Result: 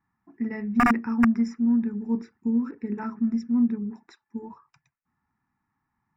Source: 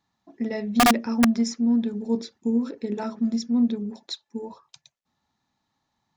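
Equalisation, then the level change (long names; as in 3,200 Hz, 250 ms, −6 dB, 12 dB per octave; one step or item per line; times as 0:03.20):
Savitzky-Golay smoothing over 25 samples
phaser with its sweep stopped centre 1,400 Hz, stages 4
+1.5 dB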